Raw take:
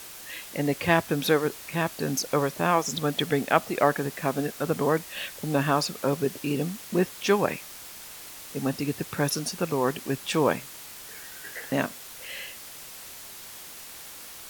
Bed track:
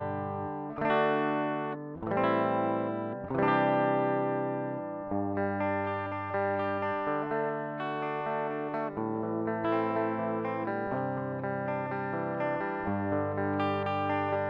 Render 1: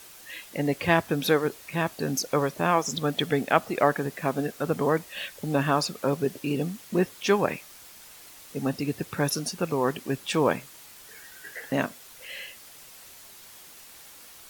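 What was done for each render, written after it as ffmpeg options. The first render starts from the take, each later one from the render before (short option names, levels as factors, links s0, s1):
-af "afftdn=nr=6:nf=-43"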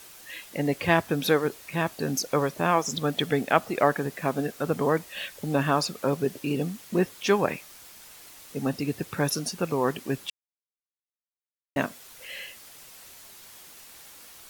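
-filter_complex "[0:a]asplit=3[s0][s1][s2];[s0]atrim=end=10.3,asetpts=PTS-STARTPTS,afade=t=out:st=10.296:d=0.004:c=hsin[s3];[s1]atrim=start=10.3:end=11.76,asetpts=PTS-STARTPTS,volume=0[s4];[s2]atrim=start=11.76,asetpts=PTS-STARTPTS,afade=t=in:d=0.004:c=hsin[s5];[s3][s4][s5]concat=n=3:v=0:a=1"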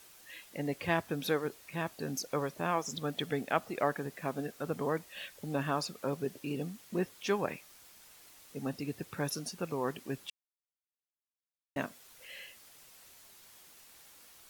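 -af "volume=0.355"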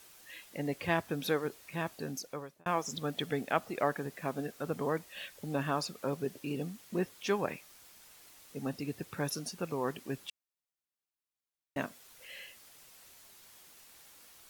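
-filter_complex "[0:a]asplit=2[s0][s1];[s0]atrim=end=2.66,asetpts=PTS-STARTPTS,afade=t=out:st=1.94:d=0.72[s2];[s1]atrim=start=2.66,asetpts=PTS-STARTPTS,afade=t=in:d=0.004:c=hsin[s3];[s2][s3]concat=n=2:v=0:a=1"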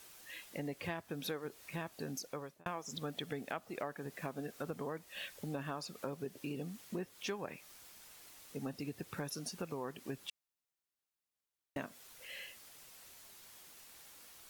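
-af "acompressor=threshold=0.0126:ratio=5"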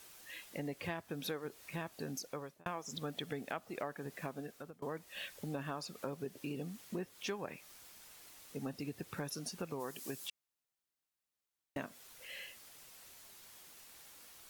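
-filter_complex "[0:a]asplit=3[s0][s1][s2];[s0]afade=t=out:st=9.79:d=0.02[s3];[s1]bass=f=250:g=-4,treble=f=4000:g=12,afade=t=in:st=9.79:d=0.02,afade=t=out:st=10.27:d=0.02[s4];[s2]afade=t=in:st=10.27:d=0.02[s5];[s3][s4][s5]amix=inputs=3:normalize=0,asplit=2[s6][s7];[s6]atrim=end=4.82,asetpts=PTS-STARTPTS,afade=t=out:st=4.08:d=0.74:c=qsin:silence=0.0668344[s8];[s7]atrim=start=4.82,asetpts=PTS-STARTPTS,afade=t=in:d=0.004:c=hsin:silence=0.0668344[s9];[s8][s9]concat=n=2:v=0:a=1"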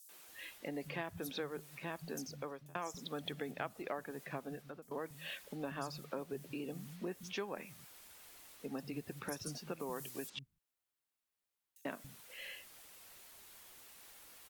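-filter_complex "[0:a]acrossover=split=160|5700[s0][s1][s2];[s1]adelay=90[s3];[s0]adelay=280[s4];[s4][s3][s2]amix=inputs=3:normalize=0"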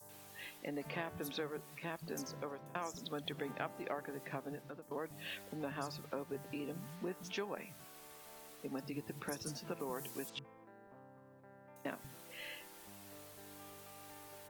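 -filter_complex "[1:a]volume=0.0447[s0];[0:a][s0]amix=inputs=2:normalize=0"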